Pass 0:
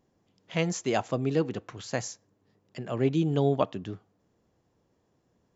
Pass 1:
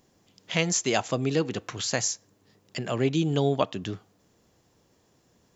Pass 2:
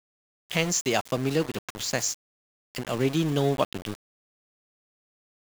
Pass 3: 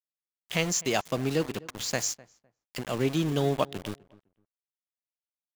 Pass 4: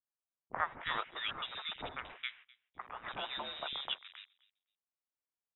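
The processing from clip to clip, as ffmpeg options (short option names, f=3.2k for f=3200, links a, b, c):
-filter_complex "[0:a]highshelf=f=2.3k:g=11,asplit=2[a][b];[b]acompressor=threshold=-33dB:ratio=6,volume=3dB[c];[a][c]amix=inputs=2:normalize=0,volume=-2.5dB"
-af "aeval=exprs='val(0)*gte(abs(val(0)),0.0266)':c=same"
-filter_complex "[0:a]asplit=2[a][b];[b]adelay=254,lowpass=f=1.5k:p=1,volume=-21dB,asplit=2[c][d];[d]adelay=254,lowpass=f=1.5k:p=1,volume=0.2[e];[a][c][e]amix=inputs=3:normalize=0,volume=-2dB"
-filter_complex "[0:a]aderivative,lowpass=f=3.4k:t=q:w=0.5098,lowpass=f=3.4k:t=q:w=0.6013,lowpass=f=3.4k:t=q:w=0.9,lowpass=f=3.4k:t=q:w=2.563,afreqshift=-4000,acrossover=split=360|1800[a][b][c];[b]adelay=30[d];[c]adelay=300[e];[a][d][e]amix=inputs=3:normalize=0,volume=9dB"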